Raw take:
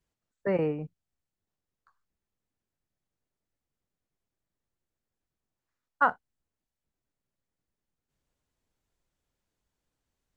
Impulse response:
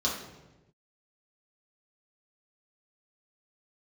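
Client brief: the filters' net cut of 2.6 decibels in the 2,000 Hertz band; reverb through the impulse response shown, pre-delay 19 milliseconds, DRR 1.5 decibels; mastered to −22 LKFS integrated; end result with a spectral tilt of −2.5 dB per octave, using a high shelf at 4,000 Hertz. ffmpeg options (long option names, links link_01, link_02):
-filter_complex "[0:a]equalizer=frequency=2000:width_type=o:gain=-3.5,highshelf=frequency=4000:gain=-4.5,asplit=2[link_01][link_02];[1:a]atrim=start_sample=2205,adelay=19[link_03];[link_02][link_03]afir=irnorm=-1:irlink=0,volume=-10dB[link_04];[link_01][link_04]amix=inputs=2:normalize=0,volume=5.5dB"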